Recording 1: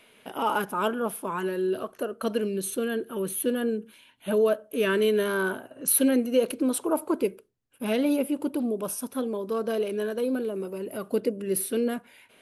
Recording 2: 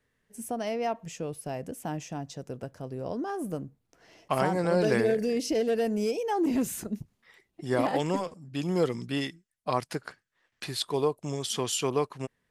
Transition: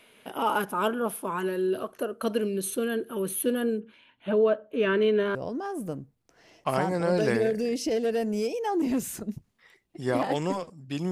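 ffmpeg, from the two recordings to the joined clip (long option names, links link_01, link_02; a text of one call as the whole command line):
ffmpeg -i cue0.wav -i cue1.wav -filter_complex "[0:a]asettb=1/sr,asplit=3[link_01][link_02][link_03];[link_01]atrim=end=3.804[link_04];[link_02]atrim=start=3.8:end=5.35,asetpts=PTS-STARTPTS,afade=type=in:duration=0.004:curve=qsin,afade=type=out:start_time=1.546:duration=0.004:curve=qsin,lowpass=3000[link_05];[link_03]atrim=start=5.346[link_06];[link_04][link_05]acrossfade=duration=0.004:curve1=hsin:curve2=qsin[link_07];[link_07][link_06]acrossfade=duration=0.004:curve1=qsin:curve2=hsin,apad=whole_dur=11.11,atrim=end=11.11,atrim=end=5.352[link_08];[1:a]atrim=start=2.988:end=8.75[link_09];[link_08][link_09]acrossfade=duration=0.004:curve1=hsin:curve2=hsin" out.wav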